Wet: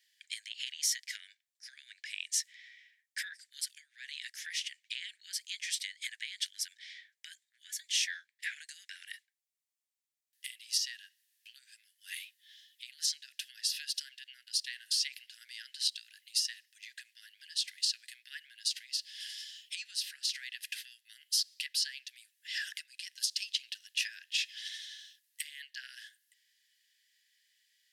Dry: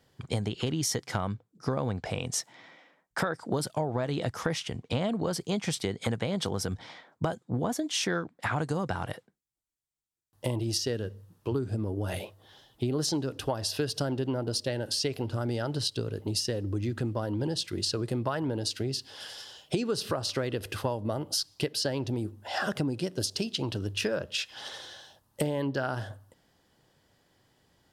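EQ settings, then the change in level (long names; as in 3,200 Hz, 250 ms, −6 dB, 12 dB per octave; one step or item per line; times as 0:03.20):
Butterworth high-pass 1,700 Hz 96 dB per octave
0.0 dB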